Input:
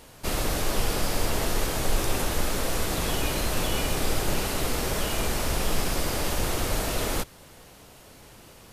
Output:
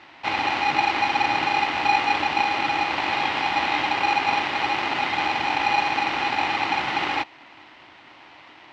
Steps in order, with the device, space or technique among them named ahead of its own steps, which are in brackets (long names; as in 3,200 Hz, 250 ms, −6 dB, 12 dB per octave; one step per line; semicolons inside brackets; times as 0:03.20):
ring modulator pedal into a guitar cabinet (ring modulator with a square carrier 820 Hz; loudspeaker in its box 91–4,200 Hz, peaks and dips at 190 Hz −6 dB, 310 Hz +8 dB, 460 Hz −6 dB, 1,000 Hz +4 dB, 2,000 Hz +9 dB, 2,900 Hz +6 dB)